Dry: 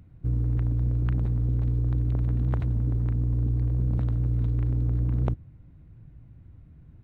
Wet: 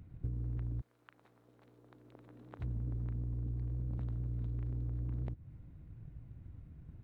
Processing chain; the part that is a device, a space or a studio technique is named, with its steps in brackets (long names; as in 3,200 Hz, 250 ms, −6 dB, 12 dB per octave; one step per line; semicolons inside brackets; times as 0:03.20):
drum-bus smash (transient designer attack +6 dB, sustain +2 dB; downward compressor 6 to 1, threshold −30 dBFS, peak gain reduction 12.5 dB; soft clipping −23.5 dBFS, distortion −24 dB)
0:00.80–0:02.59: high-pass filter 1,200 Hz → 330 Hz 12 dB per octave
level −3.5 dB